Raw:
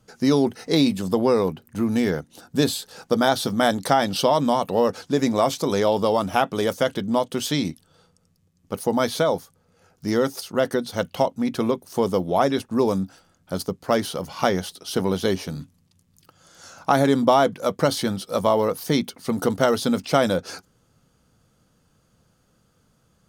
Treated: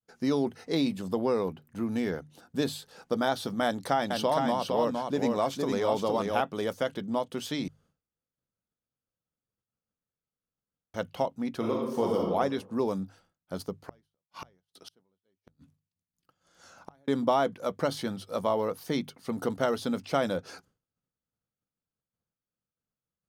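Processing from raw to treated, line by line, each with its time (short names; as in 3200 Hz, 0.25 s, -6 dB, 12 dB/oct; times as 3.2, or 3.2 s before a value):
3.64–6.41 echo 0.462 s -4 dB
7.68–10.94 room tone
11.58–12.21 reverb throw, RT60 1 s, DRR -2 dB
13.85–17.08 flipped gate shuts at -20 dBFS, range -36 dB
whole clip: expander -48 dBFS; tone controls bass -1 dB, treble -5 dB; notches 50/100/150 Hz; gain -8 dB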